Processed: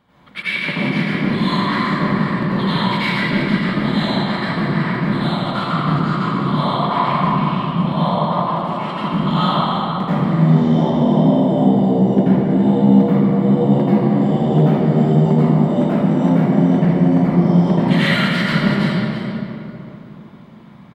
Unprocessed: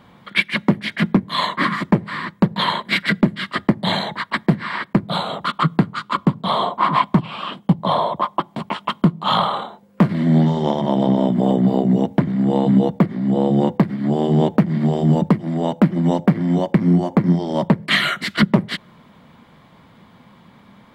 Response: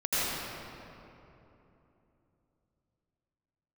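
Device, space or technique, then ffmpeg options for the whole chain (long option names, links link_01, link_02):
cave: -filter_complex "[0:a]aecho=1:1:328:0.316[link_01];[1:a]atrim=start_sample=2205[link_02];[link_01][link_02]afir=irnorm=-1:irlink=0,volume=-11dB"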